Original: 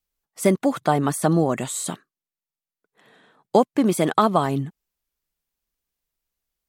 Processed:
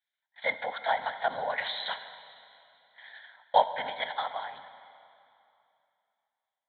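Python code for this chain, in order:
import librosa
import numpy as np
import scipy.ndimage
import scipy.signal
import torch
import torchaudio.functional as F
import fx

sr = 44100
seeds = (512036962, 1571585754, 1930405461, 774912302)

y = fx.lpc_vocoder(x, sr, seeds[0], excitation='whisper', order=8)
y = scipy.signal.sosfilt(scipy.signal.butter(2, 1300.0, 'highpass', fs=sr, output='sos'), y)
y = fx.rider(y, sr, range_db=10, speed_s=0.5)
y = fx.fixed_phaser(y, sr, hz=1800.0, stages=8)
y = fx.rev_plate(y, sr, seeds[1], rt60_s=2.7, hf_ratio=0.95, predelay_ms=0, drr_db=10.0)
y = y * 10.0 ** (4.0 / 20.0)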